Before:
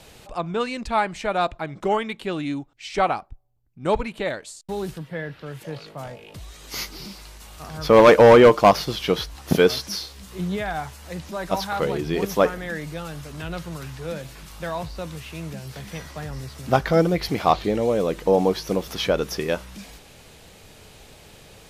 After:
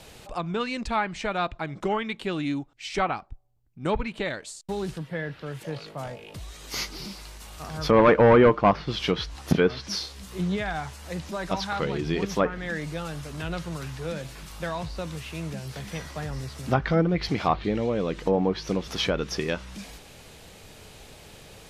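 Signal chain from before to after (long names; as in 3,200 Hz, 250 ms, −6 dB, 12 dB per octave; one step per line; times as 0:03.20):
treble cut that deepens with the level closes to 1,800 Hz, closed at −14 dBFS
dynamic equaliser 610 Hz, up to −7 dB, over −31 dBFS, Q 0.8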